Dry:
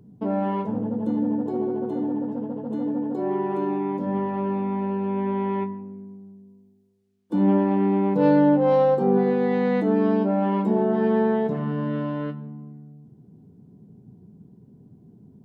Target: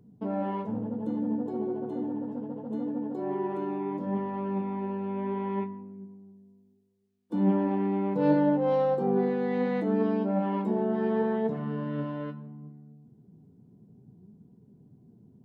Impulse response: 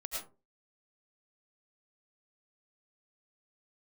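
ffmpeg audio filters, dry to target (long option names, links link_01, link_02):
-af "flanger=delay=4.1:depth=4.7:regen=79:speed=0.69:shape=sinusoidal,volume=-1.5dB"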